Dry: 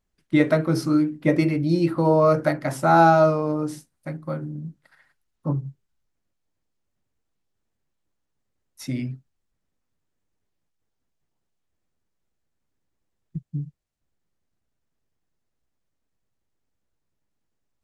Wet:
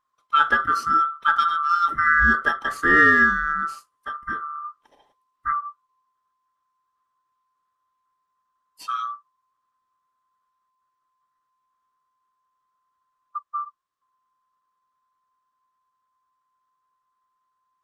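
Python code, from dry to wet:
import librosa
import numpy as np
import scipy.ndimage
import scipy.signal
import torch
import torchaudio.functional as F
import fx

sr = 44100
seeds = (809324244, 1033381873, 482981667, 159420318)

y = fx.band_swap(x, sr, width_hz=1000)
y = fx.high_shelf(y, sr, hz=7900.0, db=-8.0)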